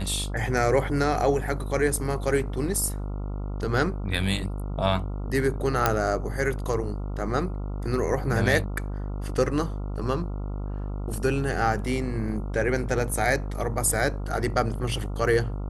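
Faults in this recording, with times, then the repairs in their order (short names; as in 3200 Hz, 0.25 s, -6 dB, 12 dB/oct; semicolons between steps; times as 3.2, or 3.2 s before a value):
buzz 50 Hz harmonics 28 -31 dBFS
5.86 pop -5 dBFS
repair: de-click; de-hum 50 Hz, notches 28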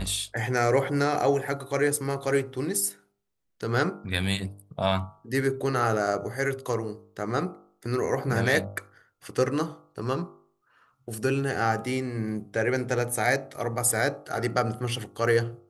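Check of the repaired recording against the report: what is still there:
none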